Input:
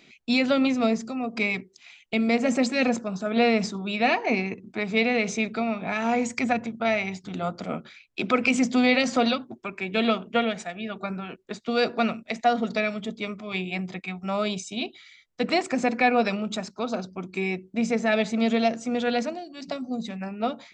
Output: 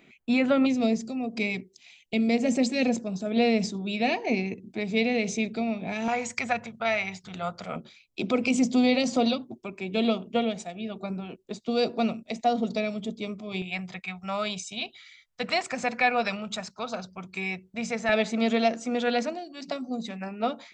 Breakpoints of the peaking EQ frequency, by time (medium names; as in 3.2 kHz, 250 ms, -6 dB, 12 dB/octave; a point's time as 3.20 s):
peaking EQ -14 dB 1.1 oct
5 kHz
from 0.66 s 1.3 kHz
from 6.08 s 290 Hz
from 7.76 s 1.6 kHz
from 13.62 s 310 Hz
from 18.09 s 93 Hz